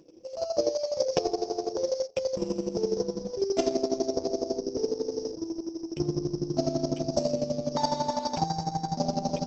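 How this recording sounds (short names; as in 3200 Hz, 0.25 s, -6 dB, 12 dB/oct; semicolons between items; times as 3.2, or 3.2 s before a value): a buzz of ramps at a fixed pitch in blocks of 8 samples; chopped level 12 Hz, depth 65%, duty 25%; Opus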